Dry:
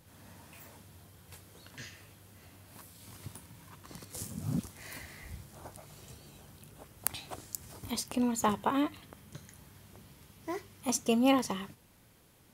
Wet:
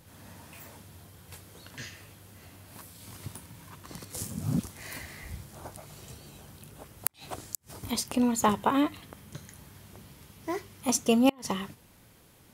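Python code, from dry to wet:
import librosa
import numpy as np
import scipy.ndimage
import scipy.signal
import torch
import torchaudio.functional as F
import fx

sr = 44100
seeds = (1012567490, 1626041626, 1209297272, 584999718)

y = fx.gate_flip(x, sr, shuts_db=-16.0, range_db=-33)
y = y * 10.0 ** (4.5 / 20.0)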